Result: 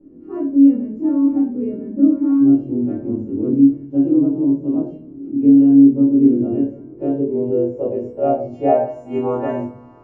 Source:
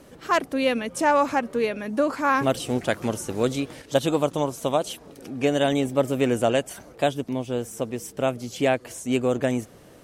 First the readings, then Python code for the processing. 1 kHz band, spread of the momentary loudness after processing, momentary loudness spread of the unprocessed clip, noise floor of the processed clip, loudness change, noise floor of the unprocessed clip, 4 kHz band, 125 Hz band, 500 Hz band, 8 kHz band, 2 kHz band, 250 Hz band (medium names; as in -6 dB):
no reading, 13 LU, 9 LU, -40 dBFS, +8.0 dB, -49 dBFS, under -25 dB, +2.0 dB, +1.5 dB, under -35 dB, under -15 dB, +14.0 dB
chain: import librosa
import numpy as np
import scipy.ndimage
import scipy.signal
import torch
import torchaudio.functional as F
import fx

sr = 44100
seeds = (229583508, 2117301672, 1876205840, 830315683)

p1 = fx.freq_snap(x, sr, grid_st=2)
p2 = fx.rider(p1, sr, range_db=4, speed_s=0.5)
p3 = p1 + (p2 * librosa.db_to_amplitude(0.5))
p4 = fx.filter_sweep_lowpass(p3, sr, from_hz=290.0, to_hz=940.0, start_s=6.47, end_s=9.41, q=4.1)
p5 = fx.room_shoebox(p4, sr, seeds[0], volume_m3=53.0, walls='mixed', distance_m=1.1)
y = p5 * librosa.db_to_amplitude(-12.0)